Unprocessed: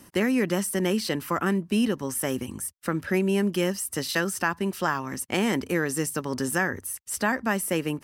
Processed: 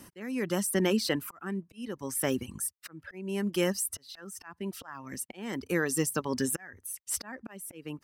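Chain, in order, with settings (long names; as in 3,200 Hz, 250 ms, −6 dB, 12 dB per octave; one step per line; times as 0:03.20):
volume swells 590 ms
reverb reduction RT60 1.3 s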